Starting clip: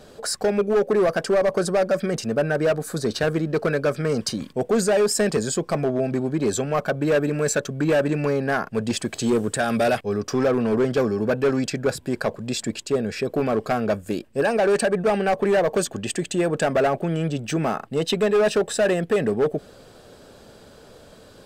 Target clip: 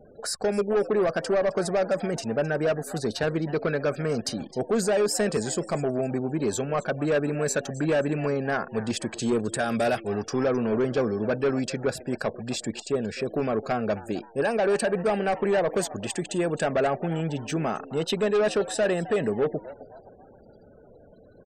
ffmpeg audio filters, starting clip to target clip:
-filter_complex "[0:a]asplit=4[a][b][c][d];[b]adelay=262,afreqshift=110,volume=-17dB[e];[c]adelay=524,afreqshift=220,volume=-24.7dB[f];[d]adelay=786,afreqshift=330,volume=-32.5dB[g];[a][e][f][g]amix=inputs=4:normalize=0,afftfilt=real='re*gte(hypot(re,im),0.00708)':imag='im*gte(hypot(re,im),0.00708)':win_size=1024:overlap=0.75,volume=-4dB"

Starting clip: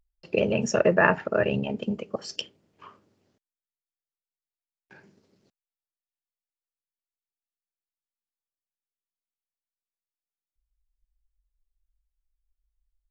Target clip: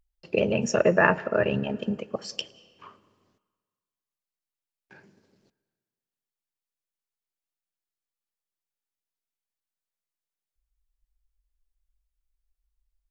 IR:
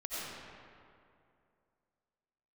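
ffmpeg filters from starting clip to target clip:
-filter_complex "[0:a]asplit=2[a][b];[1:a]atrim=start_sample=2205,asetrate=70560,aresample=44100,adelay=111[c];[b][c]afir=irnorm=-1:irlink=0,volume=-20dB[d];[a][d]amix=inputs=2:normalize=0"

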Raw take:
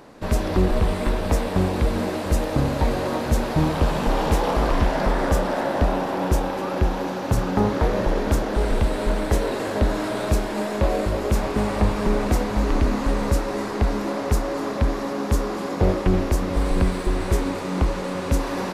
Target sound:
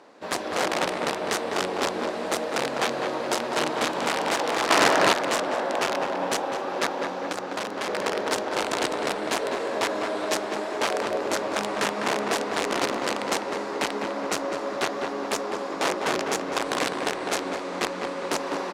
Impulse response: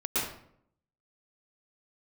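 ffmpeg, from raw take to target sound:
-filter_complex "[0:a]aeval=exprs='(mod(4.73*val(0)+1,2)-1)/4.73':c=same,asplit=3[a][b][c];[a]afade=t=out:st=7.13:d=0.02[d];[b]acompressor=threshold=-23dB:ratio=6,afade=t=in:st=7.13:d=0.02,afade=t=out:st=7.87:d=0.02[e];[c]afade=t=in:st=7.87:d=0.02[f];[d][e][f]amix=inputs=3:normalize=0,asplit=2[g][h];[h]adelay=203,lowpass=f=2k:p=1,volume=-4dB,asplit=2[i][j];[j]adelay=203,lowpass=f=2k:p=1,volume=0.52,asplit=2[k][l];[l]adelay=203,lowpass=f=2k:p=1,volume=0.52,asplit=2[m][n];[n]adelay=203,lowpass=f=2k:p=1,volume=0.52,asplit=2[o][p];[p]adelay=203,lowpass=f=2k:p=1,volume=0.52,asplit=2[q][r];[r]adelay=203,lowpass=f=2k:p=1,volume=0.52,asplit=2[s][t];[t]adelay=203,lowpass=f=2k:p=1,volume=0.52[u];[g][i][k][m][o][q][s][u]amix=inputs=8:normalize=0,asettb=1/sr,asplit=3[v][w][x];[v]atrim=end=4.704[y];[w]atrim=start=4.7:end=5.13,asetpts=PTS-STARTPTS,afade=t=in:d=0.004:c=qsin,afade=t=out:st=0.426:d=0.004:c=qsin,acontrast=83[z];[x]atrim=start=5.126[aa];[y][z]acrossfade=d=0.004:c1=hsin:c2=qsin[ab];[ab][aa]acrossfade=d=0.004:c1=qsin:c2=hsin,highpass=350,lowpass=7.7k,volume=-3.5dB"

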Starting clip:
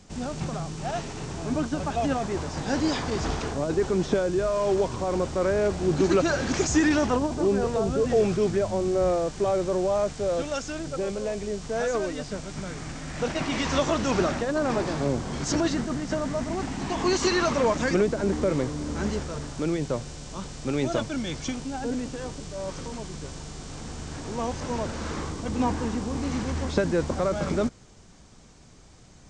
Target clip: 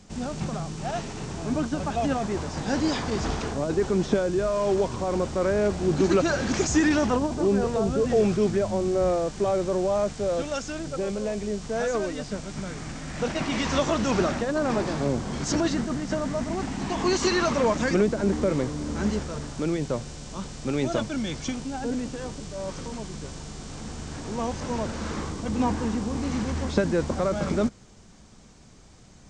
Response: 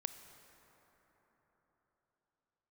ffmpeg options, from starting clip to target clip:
-af "equalizer=f=210:t=o:w=0.22:g=5"

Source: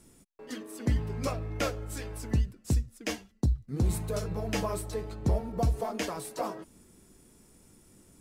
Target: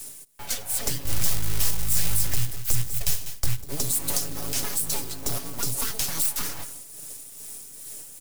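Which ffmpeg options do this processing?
-filter_complex "[0:a]aeval=exprs='abs(val(0))':c=same,aecho=1:1:7.1:0.6,aecho=1:1:194:0.0631,tremolo=f=2.4:d=0.48,acrossover=split=190|400|3500[a][b][c][d];[a]acompressor=threshold=-35dB:ratio=4[e];[b]acompressor=threshold=-51dB:ratio=4[f];[c]acompressor=threshold=-51dB:ratio=4[g];[d]acompressor=threshold=-48dB:ratio=4[h];[e][f][g][h]amix=inputs=4:normalize=0,asettb=1/sr,asplit=3[i][j][k];[i]atrim=end=1.054[l];[j]atrim=start=1.05:end=3.64,asetpts=PTS-STARTPTS,afade=t=in:d=0.004:c=qsin,afade=t=out:st=2.586:d=0.004:c=qsin,lowshelf=f=140:t=q:w=1.5:g=13.5[m];[k]atrim=start=3.636[n];[l][m]acrossfade=d=0.004:c1=hsin:c2=qsin[o];[o][n]acrossfade=d=0.004:c1=qsin:c2=hsin,acrusher=bits=7:mode=log:mix=0:aa=0.000001,crystalizer=i=6:c=0,alimiter=level_in=16dB:limit=-1dB:release=50:level=0:latency=1,volume=-8.5dB"

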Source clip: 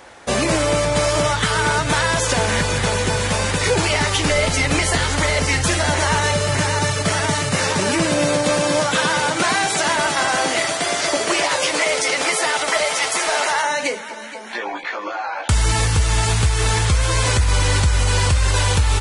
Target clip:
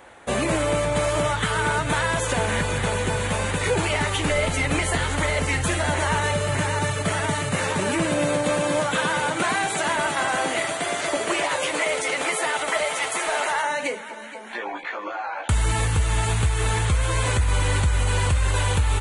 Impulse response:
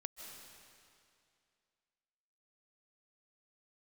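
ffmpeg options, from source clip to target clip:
-af "equalizer=f=5.2k:w=2.3:g=-12.5,volume=-4dB"

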